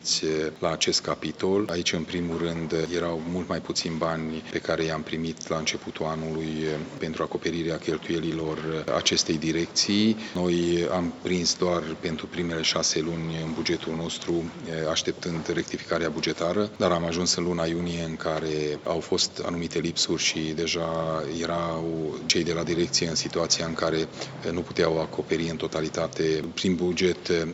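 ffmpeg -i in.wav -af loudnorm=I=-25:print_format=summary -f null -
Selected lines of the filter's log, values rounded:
Input Integrated:    -26.6 LUFS
Input True Peak:      -6.1 dBTP
Input LRA:             4.0 LU
Input Threshold:     -36.6 LUFS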